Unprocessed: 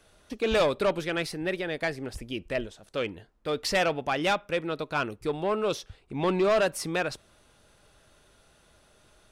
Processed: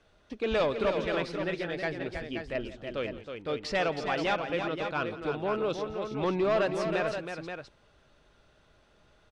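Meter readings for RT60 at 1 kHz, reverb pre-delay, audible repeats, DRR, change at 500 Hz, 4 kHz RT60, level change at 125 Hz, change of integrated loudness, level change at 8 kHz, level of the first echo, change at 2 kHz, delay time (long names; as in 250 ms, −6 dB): no reverb audible, no reverb audible, 3, no reverb audible, −2.0 dB, no reverb audible, −1.5 dB, −2.5 dB, −11.5 dB, −17.0 dB, −2.5 dB, 171 ms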